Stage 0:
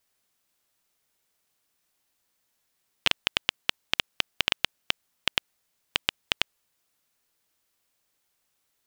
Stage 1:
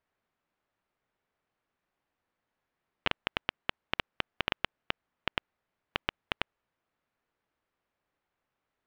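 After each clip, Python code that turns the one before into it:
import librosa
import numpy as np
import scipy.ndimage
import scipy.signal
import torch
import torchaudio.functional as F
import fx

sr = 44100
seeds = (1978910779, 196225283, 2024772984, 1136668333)

y = scipy.signal.sosfilt(scipy.signal.butter(2, 1800.0, 'lowpass', fs=sr, output='sos'), x)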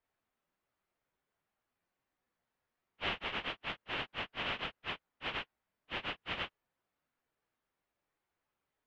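y = fx.phase_scramble(x, sr, seeds[0], window_ms=100)
y = y * 10.0 ** (-3.0 / 20.0)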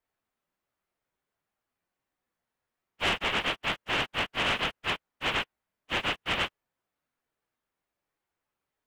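y = fx.leveller(x, sr, passes=2)
y = y * 10.0 ** (4.0 / 20.0)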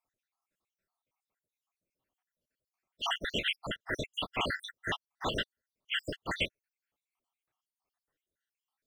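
y = fx.spec_dropout(x, sr, seeds[1], share_pct=75)
y = y * 10.0 ** (1.0 / 20.0)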